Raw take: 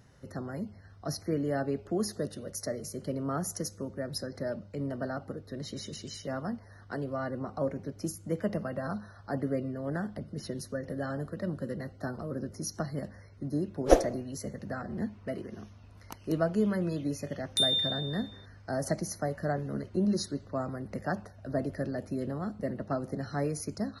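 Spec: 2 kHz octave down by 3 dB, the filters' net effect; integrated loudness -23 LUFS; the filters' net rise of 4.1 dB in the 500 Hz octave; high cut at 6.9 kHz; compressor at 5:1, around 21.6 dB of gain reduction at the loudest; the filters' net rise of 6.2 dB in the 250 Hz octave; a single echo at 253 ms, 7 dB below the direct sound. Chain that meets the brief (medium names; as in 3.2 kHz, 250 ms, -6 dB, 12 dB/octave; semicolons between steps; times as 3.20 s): low-pass 6.9 kHz; peaking EQ 250 Hz +7 dB; peaking EQ 500 Hz +3.5 dB; peaking EQ 2 kHz -4.5 dB; compression 5:1, threshold -34 dBFS; delay 253 ms -7 dB; trim +15 dB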